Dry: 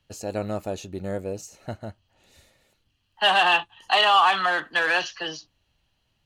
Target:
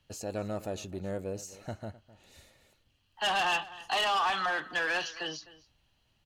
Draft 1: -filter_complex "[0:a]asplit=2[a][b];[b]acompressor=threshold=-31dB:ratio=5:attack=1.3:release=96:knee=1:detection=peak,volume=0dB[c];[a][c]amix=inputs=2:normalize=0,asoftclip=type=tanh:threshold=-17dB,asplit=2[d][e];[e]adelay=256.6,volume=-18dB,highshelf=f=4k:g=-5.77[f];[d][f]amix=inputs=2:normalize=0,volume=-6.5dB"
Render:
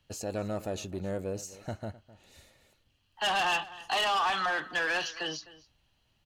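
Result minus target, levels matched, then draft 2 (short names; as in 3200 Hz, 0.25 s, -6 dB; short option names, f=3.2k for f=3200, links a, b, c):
compressor: peak gain reduction -8 dB
-filter_complex "[0:a]asplit=2[a][b];[b]acompressor=threshold=-41dB:ratio=5:attack=1.3:release=96:knee=1:detection=peak,volume=0dB[c];[a][c]amix=inputs=2:normalize=0,asoftclip=type=tanh:threshold=-17dB,asplit=2[d][e];[e]adelay=256.6,volume=-18dB,highshelf=f=4k:g=-5.77[f];[d][f]amix=inputs=2:normalize=0,volume=-6.5dB"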